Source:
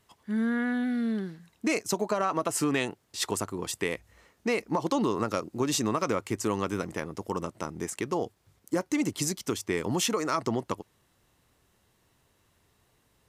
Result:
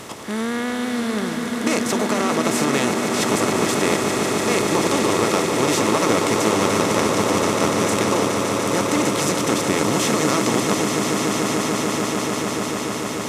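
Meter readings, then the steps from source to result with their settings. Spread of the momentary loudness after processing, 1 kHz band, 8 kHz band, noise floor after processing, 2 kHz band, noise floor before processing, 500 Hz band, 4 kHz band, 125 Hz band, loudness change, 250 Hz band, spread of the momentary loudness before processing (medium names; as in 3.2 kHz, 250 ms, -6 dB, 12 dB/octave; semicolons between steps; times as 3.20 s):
5 LU, +12.0 dB, +12.0 dB, -26 dBFS, +12.5 dB, -69 dBFS, +11.5 dB, +13.0 dB, +10.5 dB, +10.5 dB, +10.0 dB, 8 LU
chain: spectral levelling over time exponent 0.4; echo with a slow build-up 146 ms, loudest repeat 8, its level -9 dB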